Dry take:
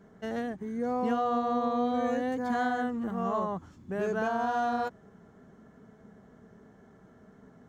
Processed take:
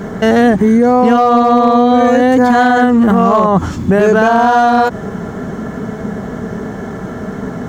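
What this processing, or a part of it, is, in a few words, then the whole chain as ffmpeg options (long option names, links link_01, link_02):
loud club master: -af "acompressor=threshold=-31dB:ratio=2.5,asoftclip=type=hard:threshold=-26dB,alimiter=level_in=34.5dB:limit=-1dB:release=50:level=0:latency=1,volume=-2dB"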